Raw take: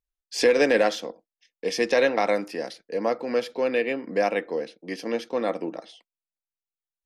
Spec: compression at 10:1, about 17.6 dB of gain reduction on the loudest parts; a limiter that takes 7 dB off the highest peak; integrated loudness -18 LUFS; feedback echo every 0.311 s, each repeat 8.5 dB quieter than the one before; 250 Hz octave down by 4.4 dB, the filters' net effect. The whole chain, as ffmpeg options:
-af "equalizer=f=250:t=o:g=-5.5,acompressor=threshold=-35dB:ratio=10,alimiter=level_in=6.5dB:limit=-24dB:level=0:latency=1,volume=-6.5dB,aecho=1:1:311|622|933|1244:0.376|0.143|0.0543|0.0206,volume=23.5dB"

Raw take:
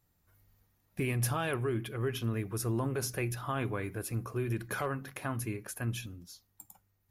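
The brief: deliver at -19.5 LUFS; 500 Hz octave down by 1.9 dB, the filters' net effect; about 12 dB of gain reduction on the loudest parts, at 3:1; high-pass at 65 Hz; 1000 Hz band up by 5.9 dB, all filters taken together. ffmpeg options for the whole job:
-af "highpass=65,equalizer=f=500:t=o:g=-4.5,equalizer=f=1k:t=o:g=8.5,acompressor=threshold=-43dB:ratio=3,volume=25dB"

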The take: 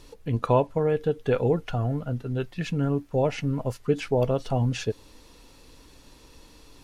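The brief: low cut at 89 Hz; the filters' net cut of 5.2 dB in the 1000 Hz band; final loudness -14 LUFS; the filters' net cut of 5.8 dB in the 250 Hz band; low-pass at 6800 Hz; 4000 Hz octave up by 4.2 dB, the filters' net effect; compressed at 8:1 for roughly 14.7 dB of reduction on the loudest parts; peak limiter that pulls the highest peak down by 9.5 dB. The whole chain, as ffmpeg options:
-af "highpass=89,lowpass=6.8k,equalizer=f=250:t=o:g=-7.5,equalizer=f=1k:t=o:g=-6.5,equalizer=f=4k:t=o:g=6.5,acompressor=threshold=-36dB:ratio=8,volume=29.5dB,alimiter=limit=-3dB:level=0:latency=1"

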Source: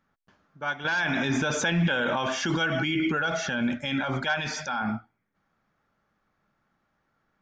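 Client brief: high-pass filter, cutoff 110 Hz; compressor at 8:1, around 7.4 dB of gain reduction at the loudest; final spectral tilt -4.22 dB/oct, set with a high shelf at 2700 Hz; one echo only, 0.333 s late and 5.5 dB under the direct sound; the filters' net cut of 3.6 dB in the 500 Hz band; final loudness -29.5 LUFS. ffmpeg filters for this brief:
-af "highpass=110,equalizer=f=500:t=o:g=-4.5,highshelf=f=2.7k:g=-4.5,acompressor=threshold=-29dB:ratio=8,aecho=1:1:333:0.531,volume=2.5dB"

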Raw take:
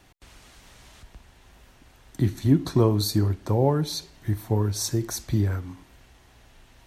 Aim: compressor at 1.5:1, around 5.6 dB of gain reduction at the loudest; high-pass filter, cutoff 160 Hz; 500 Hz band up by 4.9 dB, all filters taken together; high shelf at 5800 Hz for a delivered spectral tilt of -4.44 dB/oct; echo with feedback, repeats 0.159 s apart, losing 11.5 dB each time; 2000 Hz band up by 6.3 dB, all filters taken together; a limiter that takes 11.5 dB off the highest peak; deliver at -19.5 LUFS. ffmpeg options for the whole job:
-af "highpass=160,equalizer=f=500:t=o:g=6,equalizer=f=2k:t=o:g=8,highshelf=f=5.8k:g=-3.5,acompressor=threshold=-28dB:ratio=1.5,alimiter=limit=-22.5dB:level=0:latency=1,aecho=1:1:159|318|477:0.266|0.0718|0.0194,volume=13.5dB"

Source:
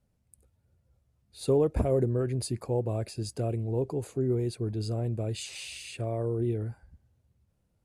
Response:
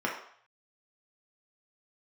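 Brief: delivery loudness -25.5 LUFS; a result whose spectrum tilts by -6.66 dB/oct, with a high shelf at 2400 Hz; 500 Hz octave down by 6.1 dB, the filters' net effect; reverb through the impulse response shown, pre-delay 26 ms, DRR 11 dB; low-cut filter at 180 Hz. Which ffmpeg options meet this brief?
-filter_complex "[0:a]highpass=180,equalizer=f=500:t=o:g=-7.5,highshelf=f=2.4k:g=-4,asplit=2[a][b];[1:a]atrim=start_sample=2205,adelay=26[c];[b][c]afir=irnorm=-1:irlink=0,volume=-20dB[d];[a][d]amix=inputs=2:normalize=0,volume=11dB"

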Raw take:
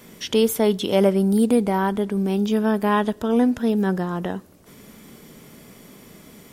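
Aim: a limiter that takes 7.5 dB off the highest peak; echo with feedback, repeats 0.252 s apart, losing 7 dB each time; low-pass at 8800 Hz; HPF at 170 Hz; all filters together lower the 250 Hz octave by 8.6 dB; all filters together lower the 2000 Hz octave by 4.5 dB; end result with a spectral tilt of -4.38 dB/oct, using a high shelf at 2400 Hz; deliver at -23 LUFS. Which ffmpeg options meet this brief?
-af "highpass=170,lowpass=8.8k,equalizer=f=250:t=o:g=-9,equalizer=f=2k:t=o:g=-8.5,highshelf=f=2.4k:g=5.5,alimiter=limit=-16dB:level=0:latency=1,aecho=1:1:252|504|756|1008|1260:0.447|0.201|0.0905|0.0407|0.0183,volume=3.5dB"

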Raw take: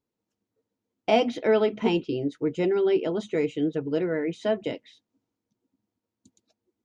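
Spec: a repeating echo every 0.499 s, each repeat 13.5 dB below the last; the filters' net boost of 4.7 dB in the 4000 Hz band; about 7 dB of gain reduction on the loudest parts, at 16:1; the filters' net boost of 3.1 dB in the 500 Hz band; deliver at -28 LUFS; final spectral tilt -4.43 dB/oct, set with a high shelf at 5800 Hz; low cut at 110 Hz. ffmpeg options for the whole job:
-af "highpass=110,equalizer=f=500:t=o:g=4,equalizer=f=4k:t=o:g=8,highshelf=f=5.8k:g=-3.5,acompressor=threshold=-20dB:ratio=16,aecho=1:1:499|998:0.211|0.0444,volume=-1.5dB"

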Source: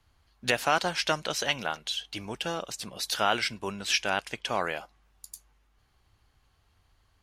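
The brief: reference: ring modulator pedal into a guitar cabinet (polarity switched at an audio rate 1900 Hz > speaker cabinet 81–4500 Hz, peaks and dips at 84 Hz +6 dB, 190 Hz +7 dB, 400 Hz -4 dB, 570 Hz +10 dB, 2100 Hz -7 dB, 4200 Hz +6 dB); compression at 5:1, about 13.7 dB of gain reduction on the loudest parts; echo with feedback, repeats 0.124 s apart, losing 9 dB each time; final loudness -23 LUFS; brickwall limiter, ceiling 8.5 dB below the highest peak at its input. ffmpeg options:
-af "acompressor=threshold=-36dB:ratio=5,alimiter=level_in=5dB:limit=-24dB:level=0:latency=1,volume=-5dB,aecho=1:1:124|248|372|496:0.355|0.124|0.0435|0.0152,aeval=exprs='val(0)*sgn(sin(2*PI*1900*n/s))':c=same,highpass=81,equalizer=f=84:t=q:w=4:g=6,equalizer=f=190:t=q:w=4:g=7,equalizer=f=400:t=q:w=4:g=-4,equalizer=f=570:t=q:w=4:g=10,equalizer=f=2.1k:t=q:w=4:g=-7,equalizer=f=4.2k:t=q:w=4:g=6,lowpass=f=4.5k:w=0.5412,lowpass=f=4.5k:w=1.3066,volume=19dB"

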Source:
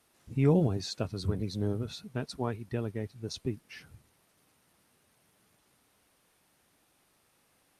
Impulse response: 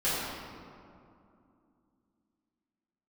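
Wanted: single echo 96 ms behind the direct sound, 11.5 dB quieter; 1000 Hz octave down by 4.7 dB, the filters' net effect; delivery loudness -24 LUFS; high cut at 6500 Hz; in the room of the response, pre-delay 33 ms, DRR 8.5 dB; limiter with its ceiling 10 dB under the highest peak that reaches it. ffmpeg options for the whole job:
-filter_complex "[0:a]lowpass=6.5k,equalizer=f=1k:t=o:g=-6.5,alimiter=level_in=0.5dB:limit=-24dB:level=0:latency=1,volume=-0.5dB,aecho=1:1:96:0.266,asplit=2[a][b];[1:a]atrim=start_sample=2205,adelay=33[c];[b][c]afir=irnorm=-1:irlink=0,volume=-20dB[d];[a][d]amix=inputs=2:normalize=0,volume=12dB"

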